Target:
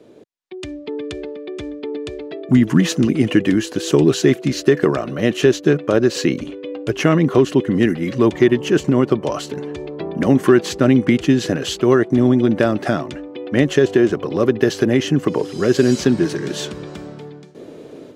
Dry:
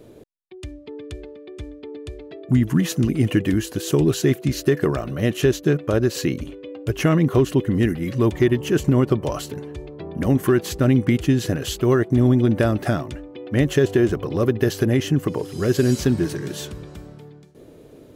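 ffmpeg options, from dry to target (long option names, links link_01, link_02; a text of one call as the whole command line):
ffmpeg -i in.wav -filter_complex "[0:a]acrossover=split=150 8000:gain=0.141 1 0.158[link_01][link_02][link_03];[link_01][link_02][link_03]amix=inputs=3:normalize=0,dynaudnorm=framelen=270:gausssize=3:maxgain=9.5dB" out.wav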